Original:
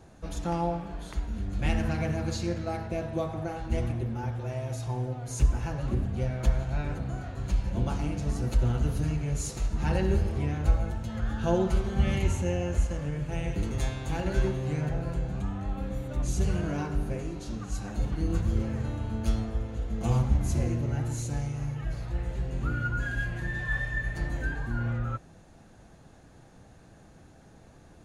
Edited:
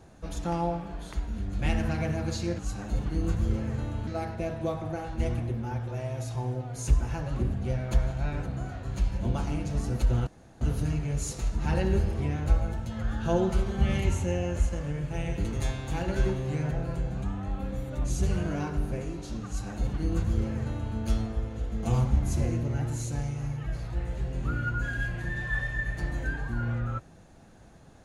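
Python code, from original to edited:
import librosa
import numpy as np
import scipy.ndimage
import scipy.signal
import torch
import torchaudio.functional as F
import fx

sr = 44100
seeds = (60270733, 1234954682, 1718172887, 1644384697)

y = fx.edit(x, sr, fx.insert_room_tone(at_s=8.79, length_s=0.34),
    fx.duplicate(start_s=17.65, length_s=1.48, to_s=2.59), tone=tone)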